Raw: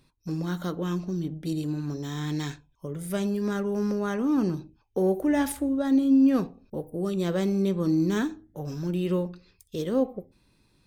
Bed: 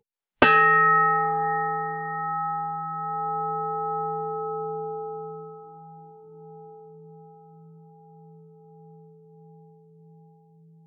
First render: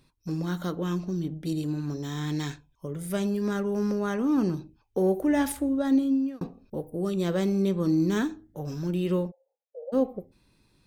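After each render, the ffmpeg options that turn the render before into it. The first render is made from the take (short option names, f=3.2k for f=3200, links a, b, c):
-filter_complex "[0:a]asplit=3[a][b][c];[a]afade=t=out:st=9.3:d=0.02[d];[b]asuperpass=centerf=640:order=12:qfactor=1.8,afade=t=in:st=9.3:d=0.02,afade=t=out:st=9.92:d=0.02[e];[c]afade=t=in:st=9.92:d=0.02[f];[d][e][f]amix=inputs=3:normalize=0,asplit=2[g][h];[g]atrim=end=6.41,asetpts=PTS-STARTPTS,afade=t=out:st=5.93:d=0.48[i];[h]atrim=start=6.41,asetpts=PTS-STARTPTS,afade=t=in:d=0.004:c=hsin[j];[i][j]concat=n=2:v=0:a=1"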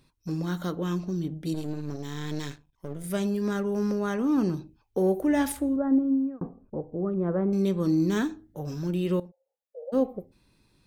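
-filter_complex "[0:a]asettb=1/sr,asplit=3[a][b][c];[a]atrim=end=1.544[d];[b]atrim=start=1.54:end=3.04,asetpts=PTS-STARTPTS,afade=t=in:d=0.004:c=qsin,afade=t=out:st=1.496:d=0.004:c=qsin,aeval=exprs='if(lt(val(0),0),0.251*val(0),val(0))':c=same[e];[c]atrim=start=3.036[f];[d][e]acrossfade=d=0.004:c1=hsin:c2=qsin[g];[g][f]acrossfade=d=0.004:c1=qsin:c2=hsin,asettb=1/sr,asplit=3[h][i][j];[h]atrim=end=5.764[k];[i]atrim=start=5.76:end=7.53,asetpts=PTS-STARTPTS,afade=t=in:d=0.004:c=qsin,afade=t=out:st=1.766:d=0.004:c=qsin,lowpass=f=1.4k:w=0.5412,lowpass=f=1.4k:w=1.3066[l];[j]atrim=start=7.526[m];[k][l]acrossfade=d=0.004:c1=hsin:c2=qsin[n];[n][m]acrossfade=d=0.004:c1=qsin:c2=hsin,asplit=2[o][p];[o]atrim=end=9.2,asetpts=PTS-STARTPTS,afade=t=out:st=9.196:d=0.004:c=hsin:silence=0.158489[q];[p]atrim=start=9.2,asetpts=PTS-STARTPTS,afade=t=in:d=0.62:silence=0.158489[r];[q][r]concat=n=2:v=0:a=1"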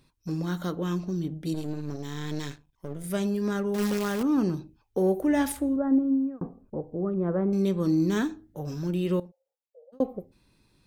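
-filter_complex "[0:a]asettb=1/sr,asplit=3[a][b][c];[a]atrim=end=3.744[d];[b]atrim=start=3.74:end=4.23,asetpts=PTS-STARTPTS,afade=t=in:d=0.004:c=qsin,afade=t=out:st=0.486:d=0.004:c=qsin,acrusher=bits=2:mode=log:mix=0:aa=0.000001[e];[c]atrim=start=4.226[f];[d][e]acrossfade=d=0.004:c1=hsin:c2=qsin[g];[g][f]acrossfade=d=0.004:c1=qsin:c2=hsin,asplit=2[h][i];[h]atrim=end=10,asetpts=PTS-STARTPTS,afade=t=out:st=9.2:d=0.8[j];[i]atrim=start=10,asetpts=PTS-STARTPTS,afade=t=in:d=0.004:c=hsin[k];[j][k]concat=n=2:v=0:a=1"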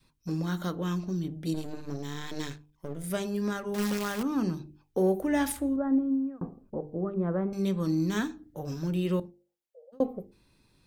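-af "bandreject=f=50:t=h:w=6,bandreject=f=100:t=h:w=6,bandreject=f=150:t=h:w=6,bandreject=f=200:t=h:w=6,bandreject=f=250:t=h:w=6,bandreject=f=300:t=h:w=6,bandreject=f=350:t=h:w=6,bandreject=f=400:t=h:w=6,bandreject=f=450:t=h:w=6,adynamicequalizer=threshold=0.0141:dfrequency=410:dqfactor=0.93:tfrequency=410:tqfactor=0.93:attack=5:release=100:ratio=0.375:range=3:mode=cutabove:tftype=bell"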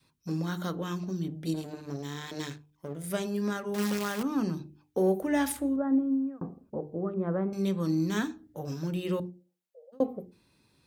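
-af "highpass=76,bandreject=f=60:t=h:w=6,bandreject=f=120:t=h:w=6,bandreject=f=180:t=h:w=6,bandreject=f=240:t=h:w=6,bandreject=f=300:t=h:w=6,bandreject=f=360:t=h:w=6"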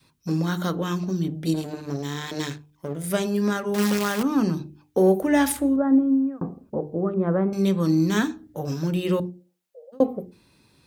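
-af "volume=7.5dB"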